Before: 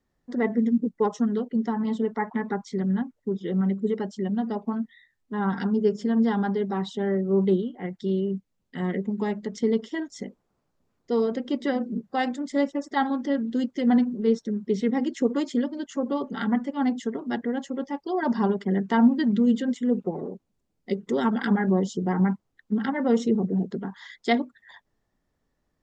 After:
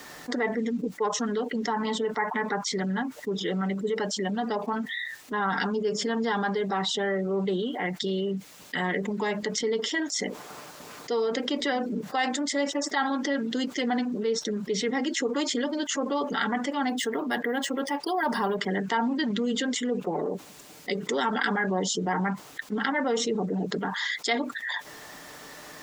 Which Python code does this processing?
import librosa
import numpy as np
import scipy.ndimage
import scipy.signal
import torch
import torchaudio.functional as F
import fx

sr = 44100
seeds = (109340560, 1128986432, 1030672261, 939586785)

y = fx.resample_linear(x, sr, factor=3, at=(16.89, 18.61))
y = fx.highpass(y, sr, hz=1200.0, slope=6)
y = y + 0.31 * np.pad(y, (int(6.7 * sr / 1000.0), 0))[:len(y)]
y = fx.env_flatten(y, sr, amount_pct=70)